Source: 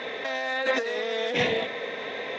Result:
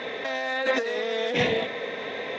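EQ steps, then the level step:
low-shelf EQ 340 Hz +4 dB
0.0 dB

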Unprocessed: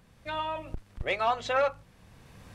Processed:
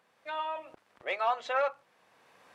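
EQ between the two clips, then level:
high-pass filter 580 Hz 12 dB per octave
high-shelf EQ 3,100 Hz −10 dB
0.0 dB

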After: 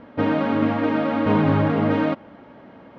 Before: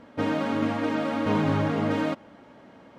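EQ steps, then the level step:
high-frequency loss of the air 240 metres
+6.0 dB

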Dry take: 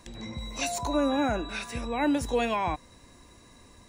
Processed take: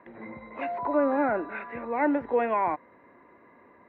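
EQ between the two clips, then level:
high-frequency loss of the air 130 metres
loudspeaker in its box 310–2,100 Hz, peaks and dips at 390 Hz +3 dB, 590 Hz +3 dB, 960 Hz +4 dB, 1,400 Hz +4 dB, 2,000 Hz +8 dB
spectral tilt −1.5 dB per octave
0.0 dB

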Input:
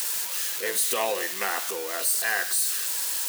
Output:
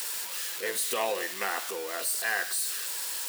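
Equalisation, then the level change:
high-shelf EQ 6,800 Hz −4.5 dB
notch filter 6,300 Hz, Q 20
−2.5 dB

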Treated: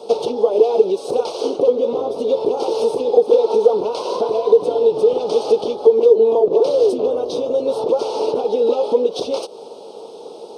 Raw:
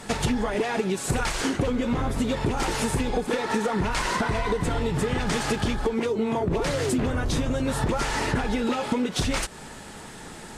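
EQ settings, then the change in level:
Savitzky-Golay smoothing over 15 samples
high-pass with resonance 460 Hz, resonance Q 4.8
Butterworth band-reject 1,800 Hz, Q 0.67
+3.5 dB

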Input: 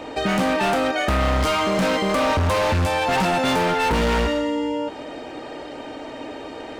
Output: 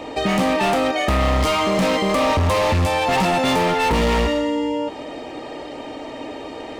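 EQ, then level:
notch filter 1,500 Hz, Q 6.1
+2.0 dB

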